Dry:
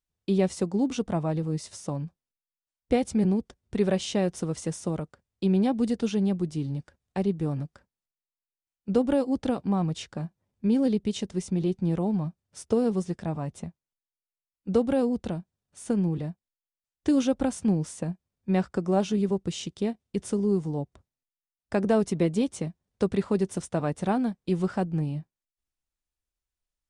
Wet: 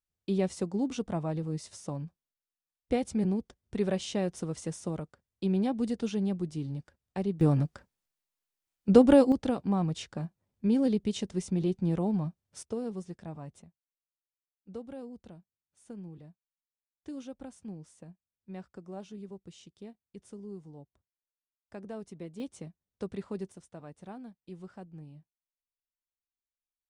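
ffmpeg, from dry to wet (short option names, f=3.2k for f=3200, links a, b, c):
-af "asetnsamples=n=441:p=0,asendcmd='7.41 volume volume 5dB;9.32 volume volume -2.5dB;12.63 volume volume -11dB;13.62 volume volume -18.5dB;22.4 volume volume -12dB;23.52 volume volume -19dB',volume=-5dB"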